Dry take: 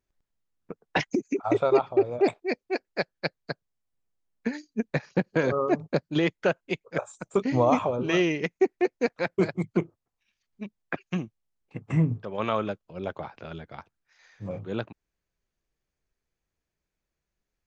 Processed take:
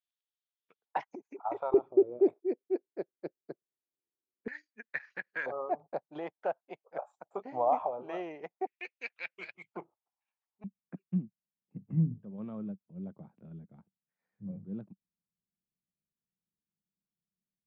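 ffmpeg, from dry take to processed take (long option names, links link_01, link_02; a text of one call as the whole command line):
ffmpeg -i in.wav -af "asetnsamples=nb_out_samples=441:pad=0,asendcmd='0.86 bandpass f 870;1.74 bandpass f 360;4.48 bandpass f 1800;5.46 bandpass f 760;8.67 bandpass f 2600;9.72 bandpass f 860;10.64 bandpass f 190',bandpass=frequency=3400:width_type=q:width=4.1:csg=0" out.wav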